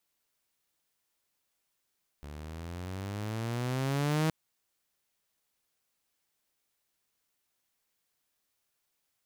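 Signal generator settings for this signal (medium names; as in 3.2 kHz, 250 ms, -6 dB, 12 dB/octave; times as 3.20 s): gliding synth tone saw, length 2.07 s, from 71.4 Hz, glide +14 st, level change +17 dB, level -22.5 dB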